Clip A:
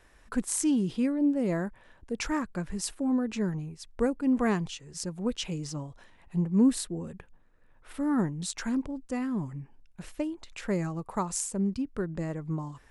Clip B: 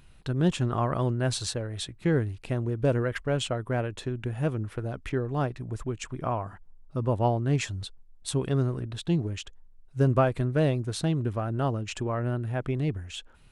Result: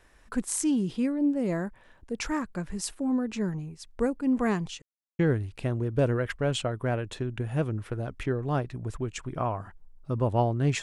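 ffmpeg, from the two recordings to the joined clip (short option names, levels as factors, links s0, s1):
-filter_complex "[0:a]apad=whole_dur=10.82,atrim=end=10.82,asplit=2[s0][s1];[s0]atrim=end=4.82,asetpts=PTS-STARTPTS,afade=t=out:st=4.816:d=0.004:c=hsin[s2];[s1]atrim=start=4.82:end=5.19,asetpts=PTS-STARTPTS,volume=0[s3];[1:a]atrim=start=2.05:end=7.68,asetpts=PTS-STARTPTS,afade=t=in:d=0.004:c=hsin[s4];[s2][s3][s4]concat=n=3:v=0:a=1"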